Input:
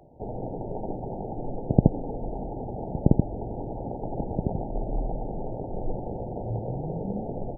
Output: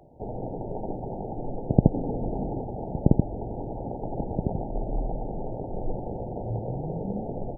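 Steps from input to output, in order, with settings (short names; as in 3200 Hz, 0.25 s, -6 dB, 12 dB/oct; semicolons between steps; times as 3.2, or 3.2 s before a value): 1.94–2.61 bell 180 Hz +6 dB 2.8 oct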